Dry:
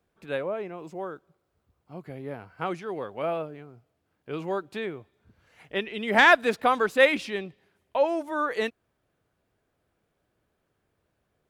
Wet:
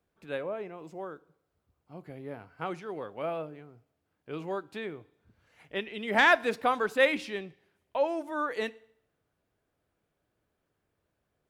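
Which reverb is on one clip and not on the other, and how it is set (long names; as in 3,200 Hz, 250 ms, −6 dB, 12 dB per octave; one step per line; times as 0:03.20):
feedback delay network reverb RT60 0.65 s, low-frequency decay 0.95×, high-frequency decay 0.95×, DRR 17.5 dB
level −4.5 dB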